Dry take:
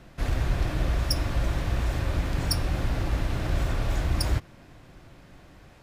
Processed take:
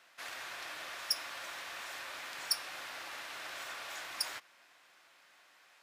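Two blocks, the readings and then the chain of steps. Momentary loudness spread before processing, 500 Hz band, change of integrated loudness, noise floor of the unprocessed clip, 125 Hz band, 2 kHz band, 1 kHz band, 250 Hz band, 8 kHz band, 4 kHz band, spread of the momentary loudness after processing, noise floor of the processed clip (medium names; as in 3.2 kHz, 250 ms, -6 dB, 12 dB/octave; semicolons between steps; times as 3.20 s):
2 LU, -16.5 dB, -11.0 dB, -52 dBFS, under -40 dB, -4.0 dB, -8.0 dB, -29.0 dB, -3.0 dB, -3.0 dB, 8 LU, -64 dBFS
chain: high-pass 1.2 kHz 12 dB/octave; trim -3 dB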